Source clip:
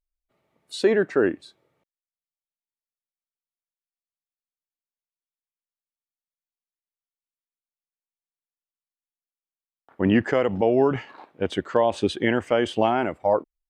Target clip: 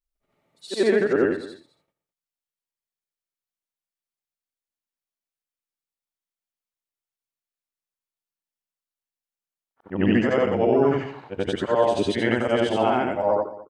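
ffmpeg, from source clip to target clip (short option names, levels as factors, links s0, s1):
-filter_complex "[0:a]afftfilt=real='re':imag='-im':win_size=8192:overlap=0.75,asplit=2[s0][s1];[s1]aecho=0:1:208:0.133[s2];[s0][s2]amix=inputs=2:normalize=0,volume=1.78"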